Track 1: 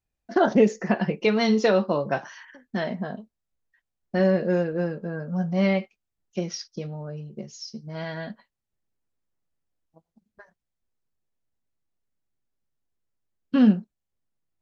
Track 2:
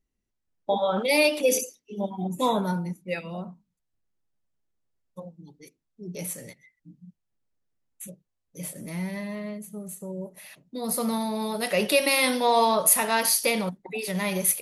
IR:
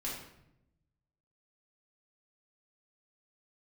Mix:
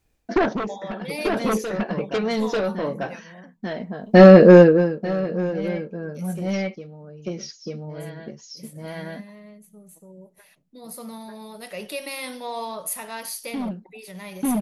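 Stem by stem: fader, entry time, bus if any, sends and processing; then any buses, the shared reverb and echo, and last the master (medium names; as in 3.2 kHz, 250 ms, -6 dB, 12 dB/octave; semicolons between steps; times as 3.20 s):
+2.0 dB, 0.00 s, no send, echo send -17 dB, small resonant body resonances 310/460/2300 Hz, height 6 dB; sine folder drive 9 dB, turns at -4 dBFS; auto duck -23 dB, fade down 0.55 s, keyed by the second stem
-10.5 dB, 0.00 s, no send, no echo send, none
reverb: none
echo: delay 892 ms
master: none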